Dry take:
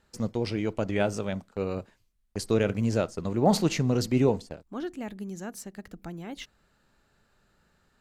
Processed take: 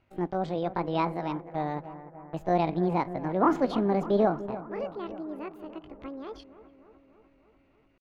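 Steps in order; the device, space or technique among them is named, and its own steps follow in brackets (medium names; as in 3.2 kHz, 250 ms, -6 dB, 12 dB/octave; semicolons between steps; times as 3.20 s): chipmunk voice (pitch shift +8 st); distance through air 300 m; bucket-brigade echo 297 ms, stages 4096, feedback 64%, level -14 dB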